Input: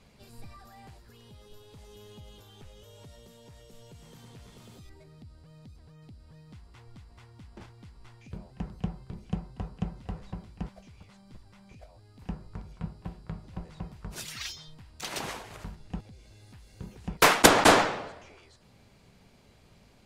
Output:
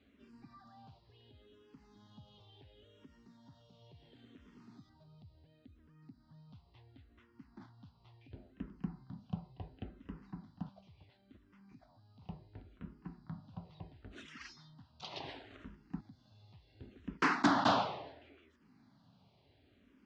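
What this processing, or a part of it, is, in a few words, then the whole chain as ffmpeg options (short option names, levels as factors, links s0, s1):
barber-pole phaser into a guitar amplifier: -filter_complex "[0:a]asplit=2[s0][s1];[s1]afreqshift=-0.71[s2];[s0][s2]amix=inputs=2:normalize=1,asoftclip=type=tanh:threshold=0.168,highpass=80,equalizer=f=270:t=q:w=4:g=10,equalizer=f=490:t=q:w=4:g=-7,equalizer=f=2300:t=q:w=4:g=-5,lowpass=f=4500:w=0.5412,lowpass=f=4500:w=1.3066,volume=0.531"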